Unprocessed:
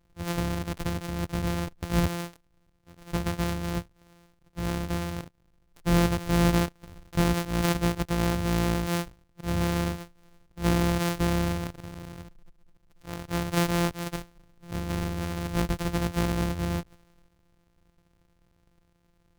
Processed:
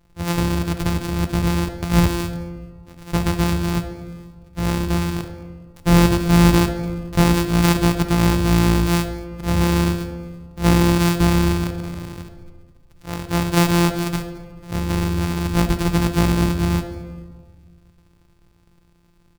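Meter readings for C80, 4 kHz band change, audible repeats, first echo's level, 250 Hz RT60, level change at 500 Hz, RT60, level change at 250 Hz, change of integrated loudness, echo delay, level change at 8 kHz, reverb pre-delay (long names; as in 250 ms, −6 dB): 10.5 dB, +8.5 dB, 1, −21.5 dB, 2.1 s, +7.5 dB, 1.6 s, +10.0 dB, +9.0 dB, 218 ms, +8.5 dB, 4 ms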